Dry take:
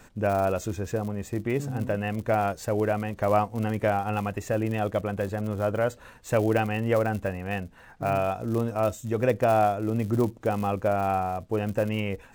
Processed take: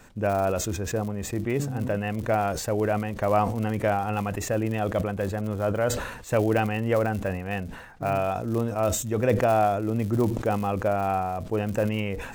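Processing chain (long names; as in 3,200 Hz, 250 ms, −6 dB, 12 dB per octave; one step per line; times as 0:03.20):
level that may fall only so fast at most 59 dB per second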